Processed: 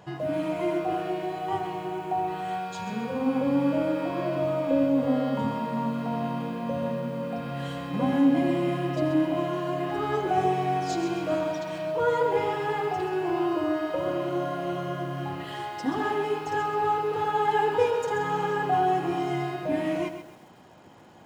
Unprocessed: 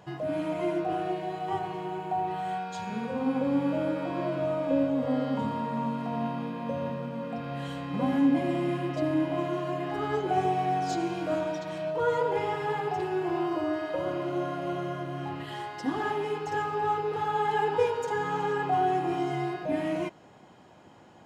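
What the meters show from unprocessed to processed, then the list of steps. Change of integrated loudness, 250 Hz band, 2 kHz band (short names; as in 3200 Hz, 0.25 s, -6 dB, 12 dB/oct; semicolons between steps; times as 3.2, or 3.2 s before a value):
+2.5 dB, +2.5 dB, +2.5 dB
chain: lo-fi delay 0.131 s, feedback 35%, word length 9-bit, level -9 dB; gain +2 dB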